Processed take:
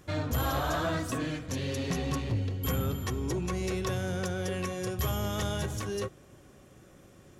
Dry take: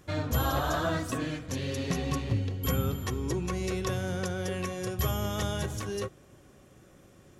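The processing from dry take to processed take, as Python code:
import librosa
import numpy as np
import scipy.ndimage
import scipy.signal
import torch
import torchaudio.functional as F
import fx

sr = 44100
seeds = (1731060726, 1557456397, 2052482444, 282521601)

y = 10.0 ** (-24.0 / 20.0) * np.tanh(x / 10.0 ** (-24.0 / 20.0))
y = y * librosa.db_to_amplitude(1.0)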